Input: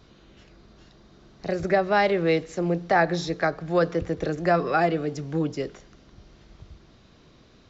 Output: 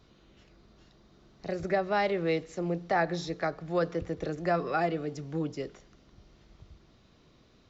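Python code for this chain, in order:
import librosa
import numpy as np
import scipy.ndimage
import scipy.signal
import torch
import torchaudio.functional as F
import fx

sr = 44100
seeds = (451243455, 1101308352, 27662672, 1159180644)

y = fx.notch(x, sr, hz=1600.0, q=23.0)
y = y * librosa.db_to_amplitude(-6.5)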